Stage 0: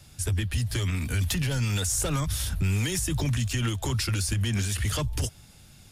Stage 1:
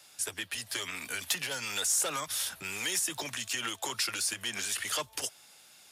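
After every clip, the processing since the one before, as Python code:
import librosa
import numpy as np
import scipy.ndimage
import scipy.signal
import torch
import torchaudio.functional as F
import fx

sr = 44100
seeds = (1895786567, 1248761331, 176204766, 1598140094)

y = scipy.signal.sosfilt(scipy.signal.butter(2, 590.0, 'highpass', fs=sr, output='sos'), x)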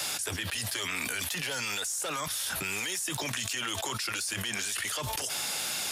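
y = fx.env_flatten(x, sr, amount_pct=100)
y = y * librosa.db_to_amplitude(-6.5)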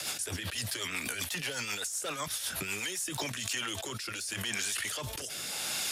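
y = fx.rotary_switch(x, sr, hz=8.0, then_hz=0.8, switch_at_s=2.7)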